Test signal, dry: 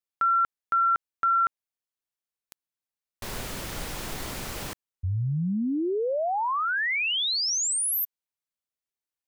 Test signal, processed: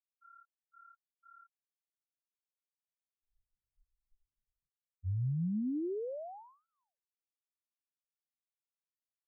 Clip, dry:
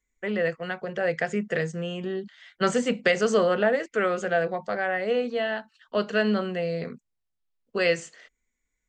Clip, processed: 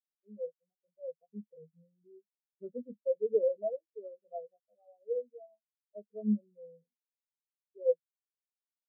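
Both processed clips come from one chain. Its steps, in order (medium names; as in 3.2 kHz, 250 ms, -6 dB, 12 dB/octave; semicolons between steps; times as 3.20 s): sorted samples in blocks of 16 samples; low-pass 1.2 kHz 24 dB/octave; spectral contrast expander 4:1; trim -5.5 dB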